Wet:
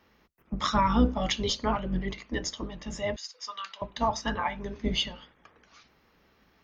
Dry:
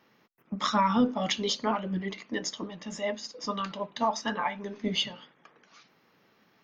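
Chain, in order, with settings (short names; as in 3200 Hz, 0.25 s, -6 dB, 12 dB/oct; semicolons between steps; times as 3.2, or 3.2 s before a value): octaver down 2 oct, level -1 dB; 3.16–3.82 HPF 1400 Hz 12 dB/oct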